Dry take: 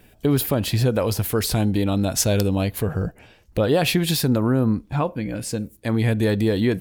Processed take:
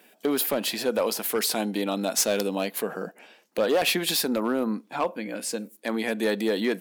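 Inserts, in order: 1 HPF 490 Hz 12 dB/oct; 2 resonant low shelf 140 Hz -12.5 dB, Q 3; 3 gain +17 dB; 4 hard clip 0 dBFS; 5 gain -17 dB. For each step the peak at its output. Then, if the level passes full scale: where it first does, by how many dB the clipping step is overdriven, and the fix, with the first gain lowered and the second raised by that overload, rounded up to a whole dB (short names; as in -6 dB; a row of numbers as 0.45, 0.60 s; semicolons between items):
-7.5, -7.5, +9.5, 0.0, -17.0 dBFS; step 3, 9.5 dB; step 3 +7 dB, step 5 -7 dB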